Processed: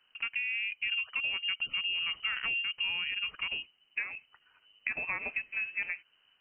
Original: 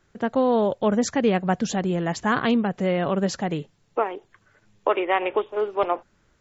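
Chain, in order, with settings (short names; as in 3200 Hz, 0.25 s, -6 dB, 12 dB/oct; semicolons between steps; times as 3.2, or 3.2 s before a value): 0.91–3.11 low shelf 300 Hz +9.5 dB; compressor 6:1, threshold -25 dBFS, peak gain reduction 13.5 dB; inverted band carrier 3000 Hz; gain -6 dB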